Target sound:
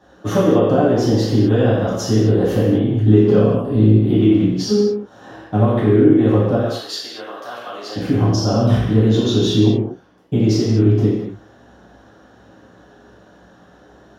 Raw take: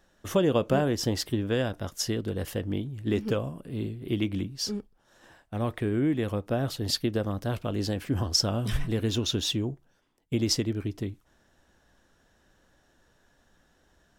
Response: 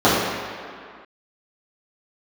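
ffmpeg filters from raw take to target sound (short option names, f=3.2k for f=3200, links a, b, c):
-filter_complex "[0:a]acompressor=threshold=-32dB:ratio=6,asettb=1/sr,asplit=3[a][b][c];[a]atrim=end=6.554[d];[b]atrim=start=6.55:end=7.96,asetpts=PTS-STARTPTS,afade=t=in:d=0.004:c=qsin,afade=t=out:st=1.406:d=0.004:c=qsin,highpass=1.2k[e];[c]atrim=start=7.956[f];[d][e]acrossfade=d=0.004:c1=hsin:c2=qsin[g];[g][f]acrossfade=d=0.004:c1=qsin:c2=hsin[h];[1:a]atrim=start_sample=2205,afade=t=out:st=0.31:d=0.01,atrim=end_sample=14112[i];[h][i]afir=irnorm=-1:irlink=0,volume=-8.5dB"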